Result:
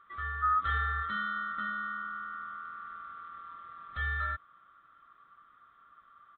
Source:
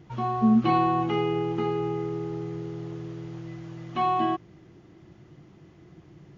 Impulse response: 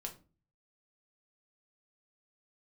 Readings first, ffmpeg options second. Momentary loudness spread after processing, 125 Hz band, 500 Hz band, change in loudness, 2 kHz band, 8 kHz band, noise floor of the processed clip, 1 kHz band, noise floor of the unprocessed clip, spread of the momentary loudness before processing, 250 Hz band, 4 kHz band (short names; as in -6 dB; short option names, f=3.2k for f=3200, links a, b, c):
17 LU, -10.5 dB, -30.0 dB, -7.5 dB, +8.5 dB, n/a, -62 dBFS, -6.5 dB, -54 dBFS, 17 LU, -27.0 dB, -7.5 dB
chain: -af "afftfilt=real='real(if(lt(b,960),b+48*(1-2*mod(floor(b/48),2)),b),0)':imag='imag(if(lt(b,960),b+48*(1-2*mod(floor(b/48),2)),b),0)':win_size=2048:overlap=0.75,aresample=8000,aresample=44100,volume=-8.5dB"